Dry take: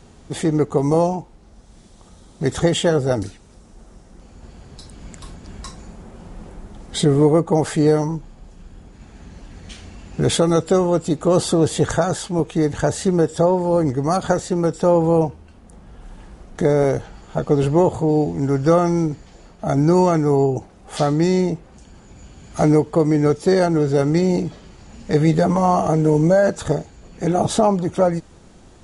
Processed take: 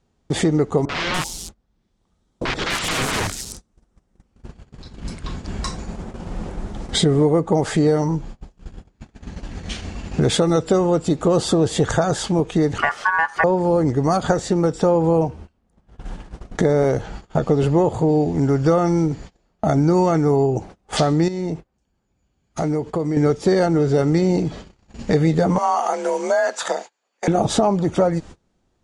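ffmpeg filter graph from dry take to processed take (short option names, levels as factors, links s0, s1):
-filter_complex "[0:a]asettb=1/sr,asplit=3[s0][s1][s2];[s0]atrim=end=0.854[s3];[s1]atrim=start=0.85:end=5.37,asetpts=PTS-STARTPTS,afade=t=in:d=0.004:c=qsin,afade=t=out:st=4.516:d=0.004:c=qsin,acrossover=split=390|3000[s4][s5][s6];[s5]acompressor=threshold=0.0251:ratio=1.5:attack=3.2:release=140:knee=2.83:detection=peak[s7];[s4][s7][s6]amix=inputs=3:normalize=0,aeval=exprs='(mod(14.1*val(0)+1,2)-1)/14.1':c=same,acrossover=split=650|5200[s8][s9][s10];[s9]adelay=40[s11];[s10]adelay=290[s12];[s8][s11][s12]amix=inputs=3:normalize=0,atrim=end_sample=199332[s13];[s2]atrim=start=5.366[s14];[s3][s13]acrossfade=d=0.004:c1=hsin:c2=qsin[s15];[s15][s14]acrossfade=d=0.004:c1=qsin:c2=hsin,asettb=1/sr,asplit=3[s16][s17][s18];[s16]atrim=end=12.784[s19];[s17]atrim=start=12.78:end=13.44,asetpts=PTS-STARTPTS,afade=t=in:d=0.004:c=qsin,afade=t=out:st=0.656:d=0.004:c=qsin,acrossover=split=3900[s20][s21];[s21]acompressor=threshold=0.0126:ratio=4:attack=1:release=60[s22];[s20][s22]amix=inputs=2:normalize=0,highshelf=f=3800:g=-8.5,aeval=exprs='val(0)*sin(2*PI*1300*n/s)':c=same[s23];[s18]atrim=start=13.436[s24];[s19][s23]acrossfade=d=0.004:c1=hsin:c2=qsin[s25];[s25][s24]acrossfade=d=0.004:c1=qsin:c2=hsin,asettb=1/sr,asplit=3[s26][s27][s28];[s26]atrim=end=21.284[s29];[s27]atrim=start=21.28:end=23.17,asetpts=PTS-STARTPTS,afade=t=in:d=0.004:c=qsin,afade=t=out:st=1.886:d=0.004:c=qsin,agate=range=0.501:threshold=0.0126:ratio=16:release=100:detection=peak,acompressor=threshold=0.0158:ratio=2:attack=3.2:release=140:knee=1:detection=peak[s30];[s28]atrim=start=23.166[s31];[s29][s30]acrossfade=d=0.004:c1=hsin:c2=qsin[s32];[s32][s31]acrossfade=d=0.004:c1=qsin:c2=hsin,asettb=1/sr,asplit=3[s33][s34][s35];[s33]atrim=end=25.584[s36];[s34]atrim=start=25.58:end=27.28,asetpts=PTS-STARTPTS,afade=t=in:d=0.004:c=qsin,afade=t=out:st=1.696:d=0.004:c=qsin,highpass=750,afreqshift=43[s37];[s35]atrim=start=27.276[s38];[s36][s37]acrossfade=d=0.004:c1=hsin:c2=qsin[s39];[s39][s38]acrossfade=d=0.004:c1=qsin:c2=hsin,agate=range=0.0355:threshold=0.0126:ratio=16:detection=peak,lowpass=7600,acompressor=threshold=0.0447:ratio=2.5,volume=2.66"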